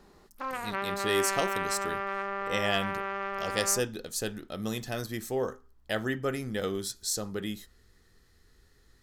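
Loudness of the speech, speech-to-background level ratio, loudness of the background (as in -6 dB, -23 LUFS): -32.5 LUFS, 1.0 dB, -33.5 LUFS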